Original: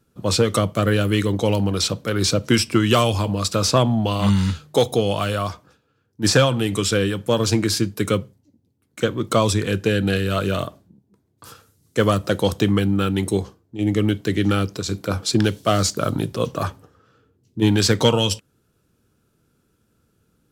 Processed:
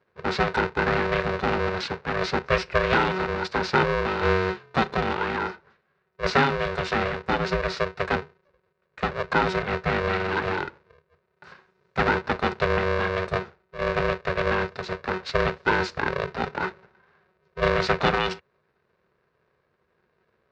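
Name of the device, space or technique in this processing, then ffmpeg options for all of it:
ring modulator pedal into a guitar cabinet: -af "aeval=exprs='val(0)*sgn(sin(2*PI*280*n/s))':c=same,highpass=79,equalizer=f=110:t=q:w=4:g=-7,equalizer=f=190:t=q:w=4:g=-7,equalizer=f=290:t=q:w=4:g=-6,equalizer=f=720:t=q:w=4:g=-6,equalizer=f=1.5k:t=q:w=4:g=4,equalizer=f=3.2k:t=q:w=4:g=-9,lowpass=f=3.8k:w=0.5412,lowpass=f=3.8k:w=1.3066,volume=-2.5dB"

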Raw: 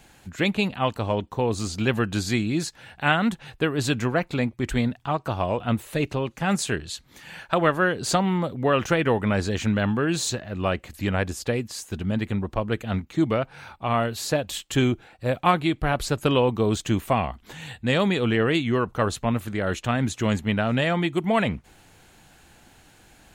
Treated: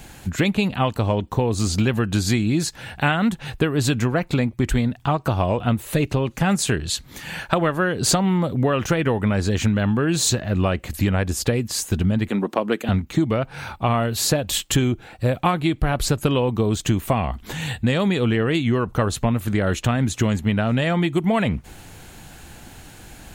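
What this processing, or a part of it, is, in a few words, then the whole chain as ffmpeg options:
ASMR close-microphone chain: -filter_complex "[0:a]asettb=1/sr,asplit=3[a][b][c];[a]atrim=end=12.294[d];[b]atrim=start=12.29:end=12.89,asetpts=PTS-STARTPTS,afade=t=in:d=0.004:c=qsin,afade=t=out:st=0.596:d=0.004:c=qsin,highpass=f=220:w=0.5412,highpass=f=220:w=1.3066[e];[c]atrim=start=12.886[f];[d][e]acrossfade=d=0.004:c1=hsin:c2=qsin[g];[g][f]acrossfade=d=0.004:c1=qsin:c2=hsin,lowshelf=f=240:g=6,acompressor=threshold=-25dB:ratio=6,highshelf=f=9.2k:g=6,volume=8.5dB"

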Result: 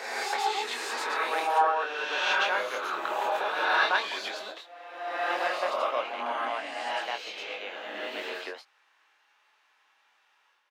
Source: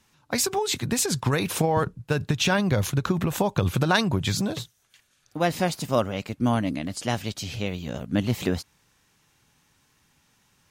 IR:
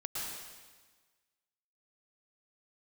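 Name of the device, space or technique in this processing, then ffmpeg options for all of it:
ghost voice: -filter_complex "[0:a]highpass=f=290:w=0.5412,highpass=f=290:w=1.3066,acrossover=split=600 3600:gain=0.178 1 0.0891[a][b][c];[a][b][c]amix=inputs=3:normalize=0,areverse[d];[1:a]atrim=start_sample=2205[e];[d][e]afir=irnorm=-1:irlink=0,areverse,highpass=330,asplit=2[f][g];[g]adelay=24,volume=-6dB[h];[f][h]amix=inputs=2:normalize=0"

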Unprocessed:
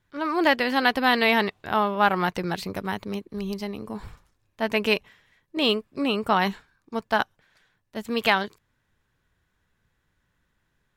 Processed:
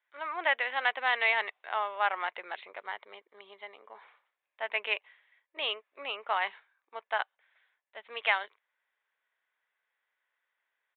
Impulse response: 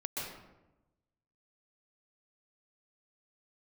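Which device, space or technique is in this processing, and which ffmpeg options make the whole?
musical greeting card: -filter_complex "[0:a]aresample=8000,aresample=44100,highpass=f=570:w=0.5412,highpass=f=570:w=1.3066,equalizer=f=2.1k:t=o:w=0.39:g=7,asettb=1/sr,asplit=3[a][b][c];[a]atrim=end=2.844[d];[b]atrim=start=2.84:end=4.01,asetpts=PTS-STARTPTS,afade=t=in:d=0.004:c=qsin,afade=t=out:st=1.166:d=0.004:c=qsin,bandreject=f=2.6k:w=7.9[e];[c]atrim=start=4.006[f];[d][e]acrossfade=d=0.004:c1=hsin:c2=qsin[g];[g][f]acrossfade=d=0.004:c1=qsin:c2=hsin,volume=-8dB"

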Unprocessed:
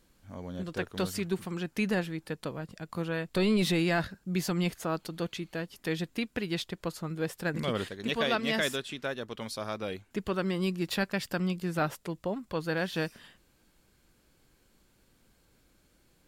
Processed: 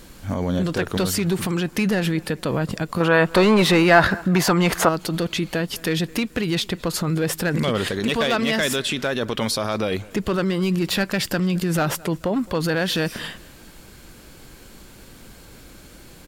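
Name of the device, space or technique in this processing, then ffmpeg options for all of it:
loud club master: -filter_complex "[0:a]acompressor=threshold=-34dB:ratio=1.5,asoftclip=type=hard:threshold=-26dB,alimiter=level_in=35dB:limit=-1dB:release=50:level=0:latency=1,asplit=2[a][b];[b]adelay=215,lowpass=f=4.1k:p=1,volume=-23dB,asplit=2[c][d];[d]adelay=215,lowpass=f=4.1k:p=1,volume=0.39,asplit=2[e][f];[f]adelay=215,lowpass=f=4.1k:p=1,volume=0.39[g];[a][c][e][g]amix=inputs=4:normalize=0,asettb=1/sr,asplit=3[h][i][j];[h]atrim=end=3.004[k];[i]atrim=start=3:end=4.89,asetpts=PTS-STARTPTS,afade=t=in:d=0.004:c=qsin,afade=t=out:st=1.886:d=0.004:c=qsin,equalizer=f=1k:t=o:w=2.3:g=12.5[l];[j]atrim=start=4.886[m];[k][l]acrossfade=d=0.004:c1=hsin:c2=qsin[n];[n][m]acrossfade=d=0.004:c1=qsin:c2=hsin,volume=-13.5dB"

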